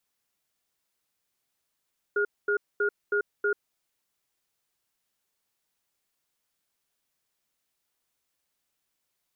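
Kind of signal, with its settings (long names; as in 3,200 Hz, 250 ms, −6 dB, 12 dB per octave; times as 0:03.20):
tone pair in a cadence 411 Hz, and 1,430 Hz, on 0.09 s, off 0.23 s, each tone −25 dBFS 1.54 s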